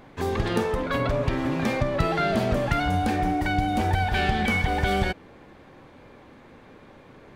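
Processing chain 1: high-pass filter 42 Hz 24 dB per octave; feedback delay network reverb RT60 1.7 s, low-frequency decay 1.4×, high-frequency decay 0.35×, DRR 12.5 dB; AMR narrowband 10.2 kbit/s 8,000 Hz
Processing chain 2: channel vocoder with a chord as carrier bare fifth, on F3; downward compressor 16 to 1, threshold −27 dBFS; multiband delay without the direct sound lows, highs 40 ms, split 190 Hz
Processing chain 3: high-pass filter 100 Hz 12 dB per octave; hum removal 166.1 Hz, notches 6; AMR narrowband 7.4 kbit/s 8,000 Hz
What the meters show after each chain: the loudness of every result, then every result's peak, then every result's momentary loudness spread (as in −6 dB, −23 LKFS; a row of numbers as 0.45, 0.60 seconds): −25.5, −33.0, −27.0 LKFS; −12.5, −19.5, −12.0 dBFS; 3, 20, 3 LU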